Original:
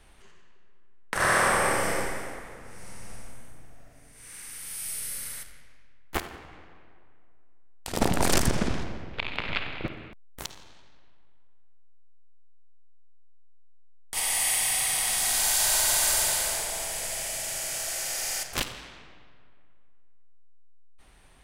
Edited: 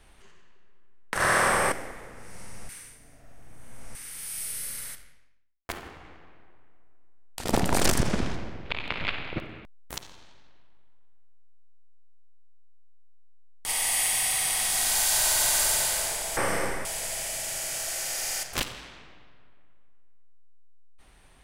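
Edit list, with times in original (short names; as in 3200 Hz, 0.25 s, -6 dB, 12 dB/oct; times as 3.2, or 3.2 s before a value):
1.72–2.2 move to 16.85
3.17–4.43 reverse
5.39–6.17 fade out quadratic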